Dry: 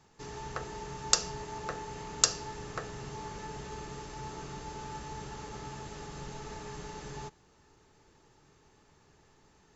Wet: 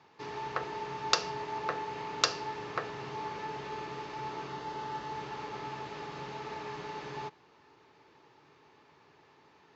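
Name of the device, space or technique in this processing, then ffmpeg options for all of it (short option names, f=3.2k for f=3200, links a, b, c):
kitchen radio: -filter_complex "[0:a]asettb=1/sr,asplit=3[a][b][c];[a]atrim=end=4.474[d];[b]atrim=start=4.47:end=5.13,asetpts=PTS-STARTPTS,afade=t=in:d=0.004:c=qsin,afade=t=out:st=0.656:d=0.004:c=qsin,bandreject=f=2.4k:w=7.9[e];[c]atrim=start=5.126[f];[d][e]acrossfade=d=0.004:c1=hsin:c2=qsin[g];[g][f]acrossfade=d=0.004:c1=qsin:c2=hsin,highpass=170,equalizer=f=200:t=q:w=4:g=-7,equalizer=f=1k:t=q:w=4:g=5,equalizer=f=2.3k:t=q:w=4:g=4,lowpass=f=4.6k:w=0.5412,lowpass=f=4.6k:w=1.3066,volume=3dB"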